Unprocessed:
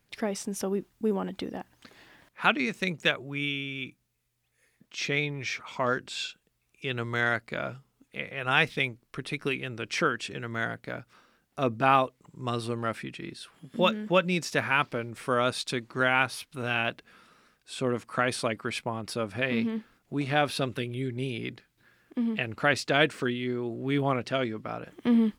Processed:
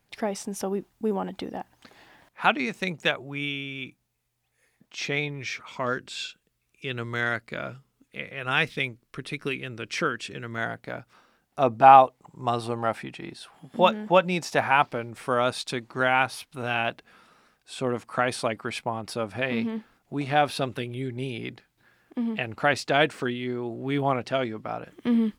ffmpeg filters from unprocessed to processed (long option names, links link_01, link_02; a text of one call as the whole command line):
ffmpeg -i in.wav -af "asetnsamples=nb_out_samples=441:pad=0,asendcmd='5.28 equalizer g -2.5;10.58 equalizer g 5.5;11.6 equalizer g 14;14.86 equalizer g 6.5;24.85 equalizer g -2.5',equalizer=frequency=790:width_type=o:width=0.68:gain=6.5" out.wav